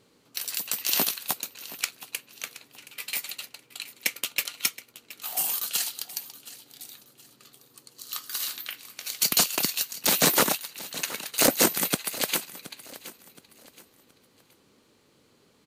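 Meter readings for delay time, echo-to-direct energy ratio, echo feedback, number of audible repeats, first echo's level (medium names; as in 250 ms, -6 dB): 722 ms, -16.5 dB, 34%, 2, -17.0 dB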